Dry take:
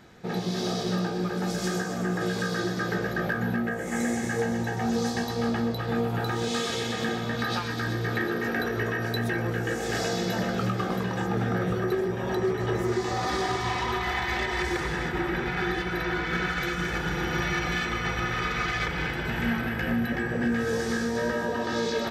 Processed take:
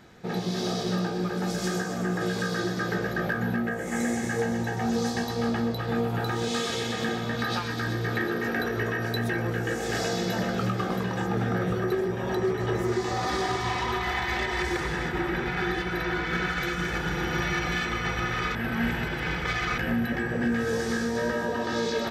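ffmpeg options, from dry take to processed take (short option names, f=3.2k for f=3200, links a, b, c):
-filter_complex "[0:a]asplit=3[a][b][c];[a]atrim=end=18.552[d];[b]atrim=start=18.548:end=19.782,asetpts=PTS-STARTPTS,areverse[e];[c]atrim=start=19.778[f];[d][e]acrossfade=d=0.004:c1=hsin:c2=hsin[g];[g][f]acrossfade=d=0.004:c1=hsin:c2=hsin"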